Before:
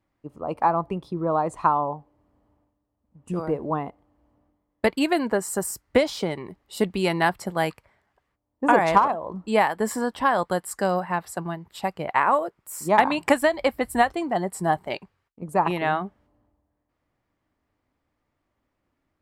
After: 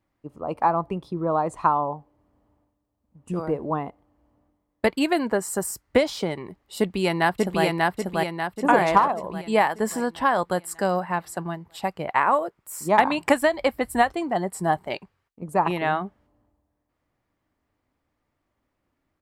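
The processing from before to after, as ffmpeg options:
-filter_complex "[0:a]asplit=2[a][b];[b]afade=t=in:st=6.79:d=0.01,afade=t=out:st=7.64:d=0.01,aecho=0:1:590|1180|1770|2360|2950|3540|4130:0.891251|0.445625|0.222813|0.111406|0.0557032|0.0278516|0.0139258[c];[a][c]amix=inputs=2:normalize=0"

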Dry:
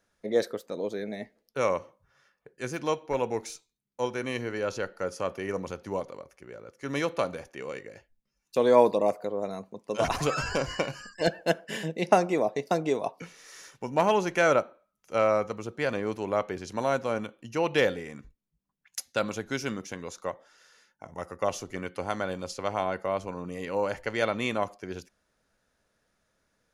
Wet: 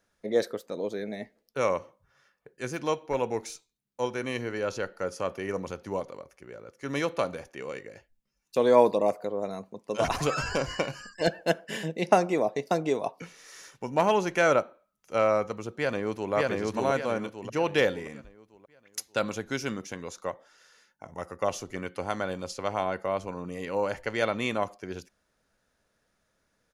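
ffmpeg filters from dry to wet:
-filter_complex "[0:a]asplit=2[a][b];[b]afade=t=in:st=15.71:d=0.01,afade=t=out:st=16.33:d=0.01,aecho=0:1:580|1160|1740|2320|2900|3480:1|0.4|0.16|0.064|0.0256|0.01024[c];[a][c]amix=inputs=2:normalize=0"

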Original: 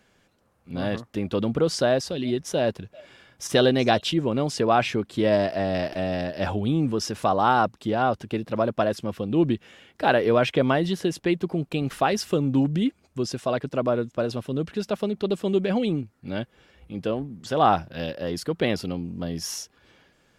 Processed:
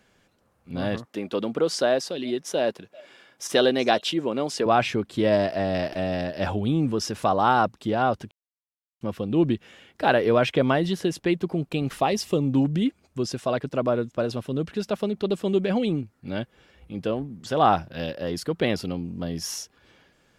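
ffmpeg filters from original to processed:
-filter_complex "[0:a]asettb=1/sr,asplit=3[a][b][c];[a]atrim=end=1.054[d];[b]atrim=start=1.05:end=4.66,asetpts=PTS-STARTPTS,afade=t=in:d=0.004:c=qsin,afade=t=out:st=3.606:d=0.004:c=qsin,highpass=260[e];[c]atrim=start=4.656[f];[d][e]acrossfade=d=0.004:c1=hsin:c2=qsin[g];[g][f]acrossfade=d=0.004:c1=qsin:c2=hsin,asettb=1/sr,asplit=3[h][i][j];[h]atrim=end=11.974[k];[i]atrim=start=11.97:end=12.53,asetpts=PTS-STARTPTS,afade=t=in:d=0.004:c=qsin,afade=t=out:st=0.556:d=0.004:c=qsin,equalizer=f=1.5k:w=5.1:g=-14[l];[j]atrim=start=12.526[m];[k][l]acrossfade=d=0.004:c1=hsin:c2=qsin[n];[n][m]acrossfade=d=0.004:c1=qsin:c2=hsin,asplit=3[o][p][q];[o]atrim=end=8.31,asetpts=PTS-STARTPTS,afade=t=out:st=8.306:d=0.004:c=hsin[r];[p]atrim=start=8.31:end=9.01,asetpts=PTS-STARTPTS,volume=0[s];[q]atrim=start=9.01,asetpts=PTS-STARTPTS,afade=t=in:d=0.004:c=hsin[t];[r][s][t]concat=n=3:v=0:a=1"

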